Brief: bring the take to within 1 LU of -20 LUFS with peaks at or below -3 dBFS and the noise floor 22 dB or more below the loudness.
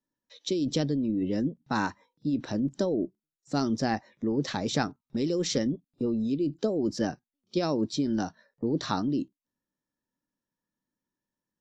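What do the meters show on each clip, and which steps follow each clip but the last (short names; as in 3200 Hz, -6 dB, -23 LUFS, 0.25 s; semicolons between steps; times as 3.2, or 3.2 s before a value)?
loudness -30.0 LUFS; peak -12.0 dBFS; loudness target -20.0 LUFS
-> gain +10 dB; limiter -3 dBFS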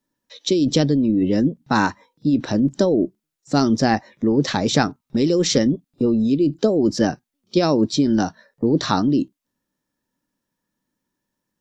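loudness -20.0 LUFS; peak -3.0 dBFS; noise floor -82 dBFS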